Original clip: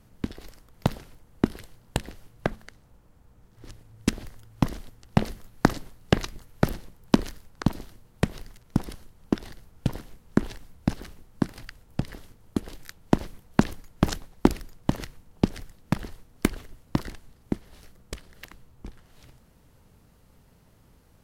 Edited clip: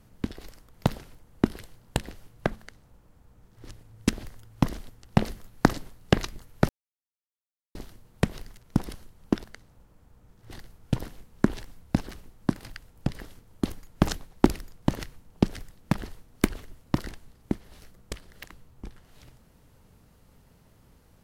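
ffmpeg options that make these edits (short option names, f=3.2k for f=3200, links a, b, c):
-filter_complex "[0:a]asplit=6[a][b][c][d][e][f];[a]atrim=end=6.69,asetpts=PTS-STARTPTS,afade=t=out:st=6.686:d=0.004:c=hsin[g];[b]atrim=start=6.69:end=7.75,asetpts=PTS-STARTPTS,volume=0[h];[c]atrim=start=7.75:end=9.442,asetpts=PTS-STARTPTS,afade=t=in:d=0.004:c=hsin[i];[d]atrim=start=2.578:end=3.652[j];[e]atrim=start=9.438:end=12.582[k];[f]atrim=start=13.658[l];[g][h][i]concat=n=3:v=0:a=1[m];[m][j]acrossfade=d=0.004:c1=hsin:c2=hsin[n];[n][k]acrossfade=d=0.004:c1=hsin:c2=hsin[o];[o][l]acrossfade=d=0.004:c1=hsin:c2=hsin"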